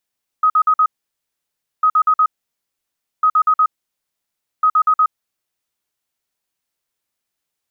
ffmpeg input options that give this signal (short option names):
-f lavfi -i "aevalsrc='0.335*sin(2*PI*1260*t)*clip(min(mod(mod(t,1.4),0.12),0.07-mod(mod(t,1.4),0.12))/0.005,0,1)*lt(mod(t,1.4),0.48)':d=5.6:s=44100"